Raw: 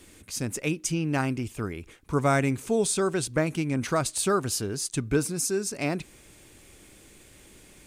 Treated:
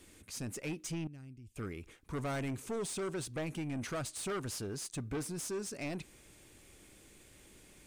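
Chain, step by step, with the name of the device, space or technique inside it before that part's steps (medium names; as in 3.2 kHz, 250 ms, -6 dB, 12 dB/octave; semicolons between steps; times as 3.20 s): 1.07–1.56 s: amplifier tone stack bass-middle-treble 10-0-1; saturation between pre-emphasis and de-emphasis (treble shelf 8.6 kHz +12 dB; saturation -26.5 dBFS, distortion -8 dB; treble shelf 8.6 kHz -12 dB); trim -6.5 dB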